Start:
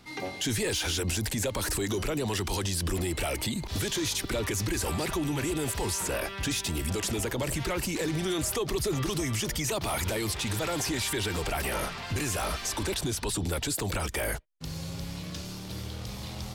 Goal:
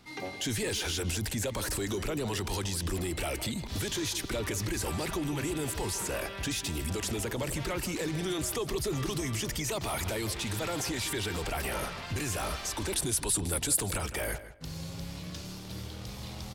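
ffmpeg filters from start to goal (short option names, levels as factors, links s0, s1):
-filter_complex "[0:a]asettb=1/sr,asplit=3[s0][s1][s2];[s0]atrim=end=12.934[s3];[s1]atrim=start=12.93:end=13.98,asetpts=PTS-STARTPTS,afade=t=in:d=0.004:c=qsin,afade=t=out:st=1.046:d=0.004:c=qsin,equalizer=f=10000:w=1.5:g=13[s4];[s2]atrim=start=13.976[s5];[s3][s4]acrossfade=d=0.004:c1=hsin:c2=qsin[s6];[s6][s5]acrossfade=d=0.004:c1=qsin:c2=hsin,asplit=2[s7][s8];[s8]adelay=160,lowpass=f=3400:p=1,volume=0.237,asplit=2[s9][s10];[s10]adelay=160,lowpass=f=3400:p=1,volume=0.24,asplit=2[s11][s12];[s12]adelay=160,lowpass=f=3400:p=1,volume=0.24[s13];[s7][s9][s11][s13]amix=inputs=4:normalize=0,volume=0.708"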